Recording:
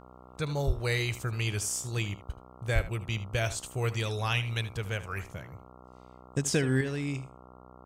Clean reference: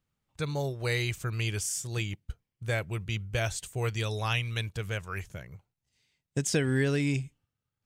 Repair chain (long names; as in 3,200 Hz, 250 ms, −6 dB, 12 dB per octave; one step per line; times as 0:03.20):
hum removal 62.5 Hz, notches 22
0:00.66–0:00.78: high-pass filter 140 Hz 24 dB per octave
0:02.74–0:02.86: high-pass filter 140 Hz 24 dB per octave
echo removal 77 ms −15 dB
0:06.81: level correction +6 dB